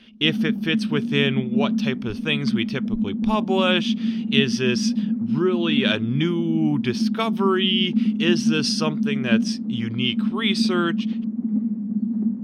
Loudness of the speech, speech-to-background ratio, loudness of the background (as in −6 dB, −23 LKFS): −24.0 LKFS, 0.5 dB, −24.5 LKFS